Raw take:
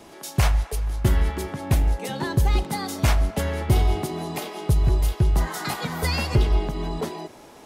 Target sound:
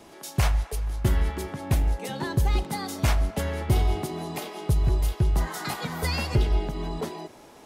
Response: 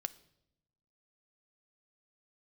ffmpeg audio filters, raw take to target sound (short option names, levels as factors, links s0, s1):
-filter_complex "[0:a]asettb=1/sr,asplit=3[s0][s1][s2];[s0]atrim=end=6.324[s3];[s1]atrim=start=6.32:end=6.73,asetpts=PTS-STARTPTS,afade=t=in:d=0.004:c=qsin,afade=t=out:st=0.406:d=0.004:c=qsin,bandreject=f=1100:w=8.2[s4];[s2]atrim=start=6.726[s5];[s3][s4]acrossfade=d=0.004:c1=hsin:c2=qsin[s6];[s6][s5]acrossfade=d=0.004:c1=qsin:c2=hsin,volume=0.708"